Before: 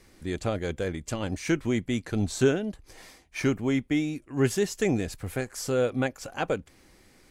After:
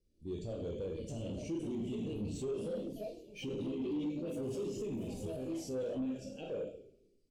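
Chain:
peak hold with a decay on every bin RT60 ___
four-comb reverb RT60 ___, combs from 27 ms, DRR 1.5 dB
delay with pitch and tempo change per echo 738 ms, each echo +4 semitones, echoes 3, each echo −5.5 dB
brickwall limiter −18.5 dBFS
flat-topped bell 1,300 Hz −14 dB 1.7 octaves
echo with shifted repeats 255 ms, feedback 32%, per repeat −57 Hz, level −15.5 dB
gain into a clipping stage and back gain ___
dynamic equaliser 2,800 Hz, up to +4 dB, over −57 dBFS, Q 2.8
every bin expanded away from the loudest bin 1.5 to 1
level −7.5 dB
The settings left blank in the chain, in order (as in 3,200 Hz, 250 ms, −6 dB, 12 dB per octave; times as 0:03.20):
0.40 s, 0.66 s, 26.5 dB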